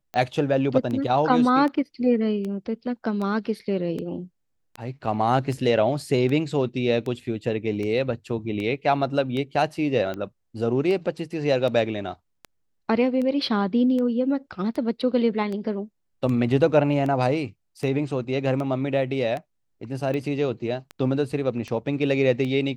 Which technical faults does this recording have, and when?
tick 78 rpm -20 dBFS

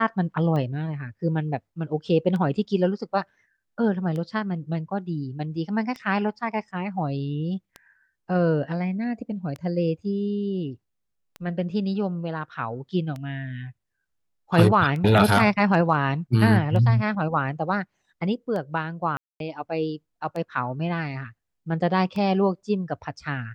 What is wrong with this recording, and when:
tick 33 1/3 rpm -21 dBFS
19.17–19.4 gap 0.232 s

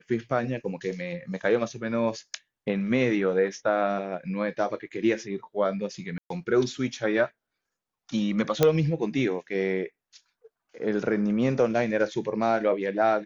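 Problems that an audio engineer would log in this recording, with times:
6.18–6.3 gap 0.123 s
8.63 pop -6 dBFS

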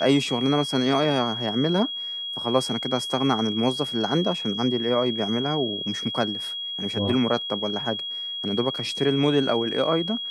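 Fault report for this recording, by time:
tone 3300 Hz -29 dBFS

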